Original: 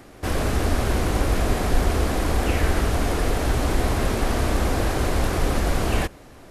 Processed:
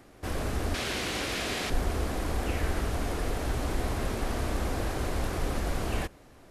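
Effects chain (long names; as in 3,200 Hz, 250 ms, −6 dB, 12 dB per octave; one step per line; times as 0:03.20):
0:00.74–0:01.70: meter weighting curve D
level −8.5 dB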